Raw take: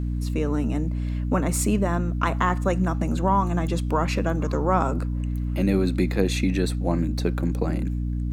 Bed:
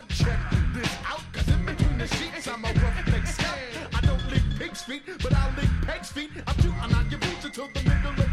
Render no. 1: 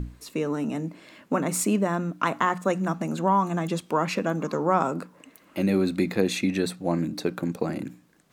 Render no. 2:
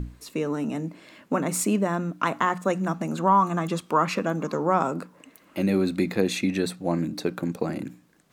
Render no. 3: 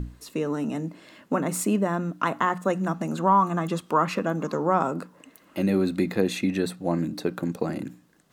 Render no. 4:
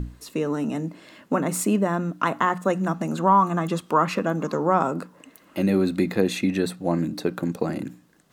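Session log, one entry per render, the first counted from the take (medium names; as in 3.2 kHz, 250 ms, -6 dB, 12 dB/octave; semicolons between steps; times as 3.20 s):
hum notches 60/120/180/240/300 Hz
3.15–4.25 s: peaking EQ 1.2 kHz +7.5 dB 0.48 oct
dynamic bell 5.7 kHz, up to -4 dB, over -42 dBFS, Q 0.77; band-stop 2.3 kHz, Q 12
trim +2 dB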